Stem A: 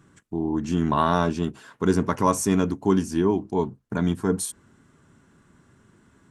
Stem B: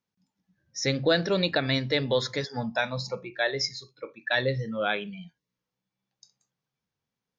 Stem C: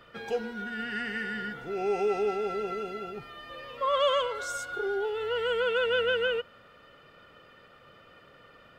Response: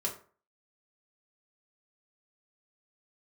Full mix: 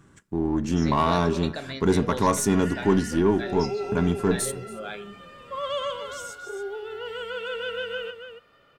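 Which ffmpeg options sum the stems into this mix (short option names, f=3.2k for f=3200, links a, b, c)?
-filter_complex "[0:a]aeval=exprs='if(lt(val(0),0),0.708*val(0),val(0))':c=same,equalizer=f=71:t=o:w=0.77:g=4,volume=1.5dB,asplit=3[a][b][c];[b]volume=-18dB[d];[c]volume=-22dB[e];[1:a]volume=-13.5dB,asplit=2[f][g];[g]volume=-5dB[h];[2:a]dynaudnorm=f=450:g=3:m=6dB,adynamicequalizer=threshold=0.0178:dfrequency=4000:dqfactor=0.7:tfrequency=4000:tqfactor=0.7:attack=5:release=100:ratio=0.375:range=3:mode=boostabove:tftype=highshelf,adelay=1700,volume=-12.5dB,asplit=3[i][j][k];[j]volume=-13dB[l];[k]volume=-7.5dB[m];[3:a]atrim=start_sample=2205[n];[d][h][l]amix=inputs=3:normalize=0[o];[o][n]afir=irnorm=-1:irlink=0[p];[e][m]amix=inputs=2:normalize=0,aecho=0:1:279:1[q];[a][f][i][p][q]amix=inputs=5:normalize=0,asoftclip=type=tanh:threshold=-10.5dB"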